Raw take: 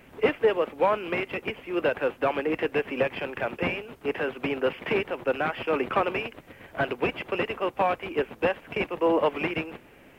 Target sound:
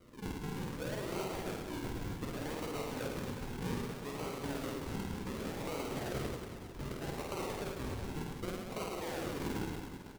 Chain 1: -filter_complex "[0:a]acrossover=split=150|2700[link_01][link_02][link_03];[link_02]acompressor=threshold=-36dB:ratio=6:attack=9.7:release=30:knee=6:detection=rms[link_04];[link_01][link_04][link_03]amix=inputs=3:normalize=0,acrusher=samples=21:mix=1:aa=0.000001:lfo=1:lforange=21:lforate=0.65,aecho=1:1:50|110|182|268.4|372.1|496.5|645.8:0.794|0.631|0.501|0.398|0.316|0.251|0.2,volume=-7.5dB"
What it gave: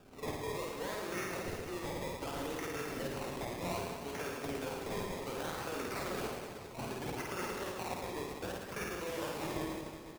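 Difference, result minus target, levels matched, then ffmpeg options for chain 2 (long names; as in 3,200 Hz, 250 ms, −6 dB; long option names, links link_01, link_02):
sample-and-hold swept by an LFO: distortion −11 dB
-filter_complex "[0:a]acrossover=split=150|2700[link_01][link_02][link_03];[link_02]acompressor=threshold=-36dB:ratio=6:attack=9.7:release=30:knee=6:detection=rms[link_04];[link_01][link_04][link_03]amix=inputs=3:normalize=0,acrusher=samples=50:mix=1:aa=0.000001:lfo=1:lforange=50:lforate=0.65,aecho=1:1:50|110|182|268.4|372.1|496.5|645.8:0.794|0.631|0.501|0.398|0.316|0.251|0.2,volume=-7.5dB"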